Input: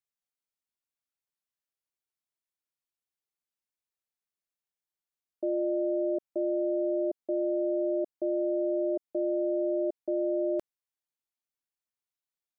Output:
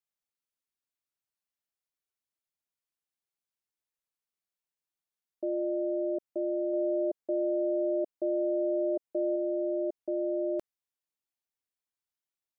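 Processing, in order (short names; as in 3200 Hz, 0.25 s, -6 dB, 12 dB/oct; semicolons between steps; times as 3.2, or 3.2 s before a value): 6.73–9.36 dynamic EQ 540 Hz, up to +3 dB, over -42 dBFS, Q 1.8; gain -2 dB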